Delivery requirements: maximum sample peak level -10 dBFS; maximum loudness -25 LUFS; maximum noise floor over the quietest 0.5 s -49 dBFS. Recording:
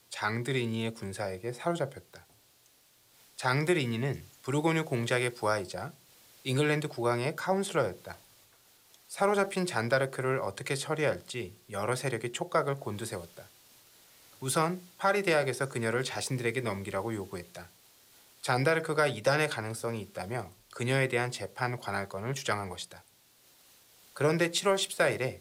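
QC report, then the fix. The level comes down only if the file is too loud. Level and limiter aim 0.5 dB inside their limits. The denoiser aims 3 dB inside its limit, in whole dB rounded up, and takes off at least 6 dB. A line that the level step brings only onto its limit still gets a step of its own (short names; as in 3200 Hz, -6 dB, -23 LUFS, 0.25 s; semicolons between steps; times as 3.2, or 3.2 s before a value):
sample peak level -15.0 dBFS: OK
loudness -31.0 LUFS: OK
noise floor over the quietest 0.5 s -64 dBFS: OK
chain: none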